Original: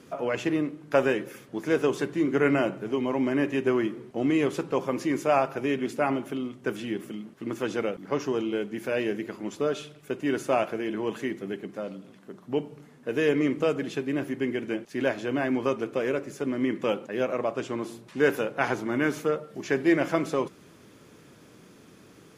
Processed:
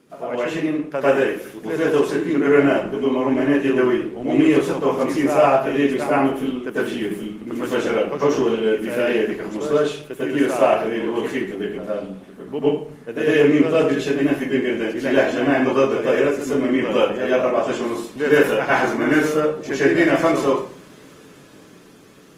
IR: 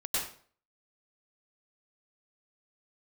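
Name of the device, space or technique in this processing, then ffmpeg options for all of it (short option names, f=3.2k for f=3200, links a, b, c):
far-field microphone of a smart speaker: -filter_complex "[1:a]atrim=start_sample=2205[a];[0:a][a]afir=irnorm=-1:irlink=0,highpass=120,dynaudnorm=f=230:g=11:m=5dB" -ar 48000 -c:a libopus -b:a 24k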